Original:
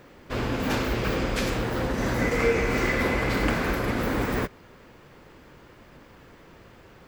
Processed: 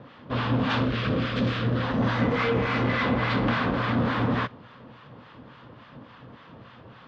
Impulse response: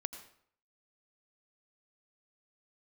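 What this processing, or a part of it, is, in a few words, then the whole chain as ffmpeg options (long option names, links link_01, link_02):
guitar amplifier with harmonic tremolo: -filter_complex "[0:a]asettb=1/sr,asplit=3[link_01][link_02][link_03];[link_01]atrim=end=0.844[link_04];[link_02]atrim=start=0.84:end=1.83,asetpts=PTS-STARTPTS,afade=type=in:duration=0.004:curve=qsin,afade=type=out:start_time=0.986:duration=0.004:curve=qsin,equalizer=frequency=860:width=2.9:gain=-13[link_05];[link_03]atrim=start=1.826[link_06];[link_04][link_05]acrossfade=duration=0.004:curve1=hsin:curve2=qsin[link_07];[link_07][link_06]acrossfade=duration=0.004:curve1=qsin:curve2=hsin,acrossover=split=880[link_08][link_09];[link_08]aeval=exprs='val(0)*(1-0.7/2+0.7/2*cos(2*PI*3.5*n/s))':channel_layout=same[link_10];[link_09]aeval=exprs='val(0)*(1-0.7/2-0.7/2*cos(2*PI*3.5*n/s))':channel_layout=same[link_11];[link_10][link_11]amix=inputs=2:normalize=0,asoftclip=type=tanh:threshold=-24.5dB,highpass=97,equalizer=frequency=120:width_type=q:width=4:gain=8,equalizer=frequency=240:width_type=q:width=4:gain=5,equalizer=frequency=370:width_type=q:width=4:gain=-8,equalizer=frequency=1100:width_type=q:width=4:gain=5,equalizer=frequency=2200:width_type=q:width=4:gain=-5,equalizer=frequency=3400:width_type=q:width=4:gain=4,lowpass=frequency=4000:width=0.5412,lowpass=frequency=4000:width=1.3066,volume=6dB"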